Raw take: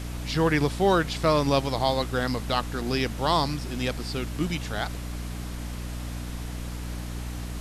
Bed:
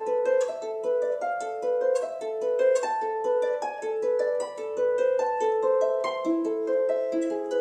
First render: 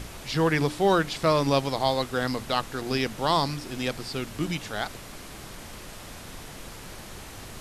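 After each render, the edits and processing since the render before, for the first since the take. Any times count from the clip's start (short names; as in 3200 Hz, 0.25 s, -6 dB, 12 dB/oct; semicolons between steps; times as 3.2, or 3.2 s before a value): notches 60/120/180/240/300 Hz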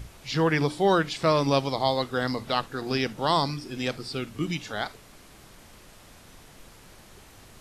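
noise print and reduce 9 dB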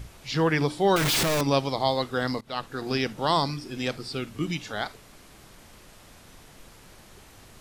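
0.96–1.41 infinite clipping; 2.41–2.88 fade in equal-power, from -23.5 dB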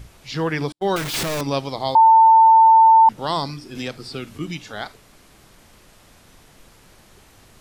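0.72–1.14 gate -26 dBFS, range -50 dB; 1.95–3.09 bleep 895 Hz -7.5 dBFS; 3.75–4.38 three-band squash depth 70%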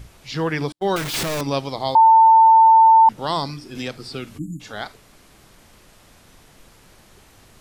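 4.38–4.6 spectral delete 340–6600 Hz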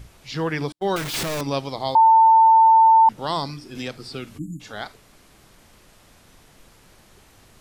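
gain -2 dB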